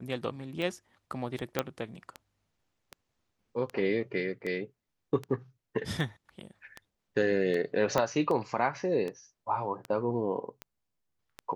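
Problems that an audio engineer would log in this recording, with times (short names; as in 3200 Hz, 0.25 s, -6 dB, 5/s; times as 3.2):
tick 78 rpm -23 dBFS
1.59 pop -12 dBFS
7.98 pop -13 dBFS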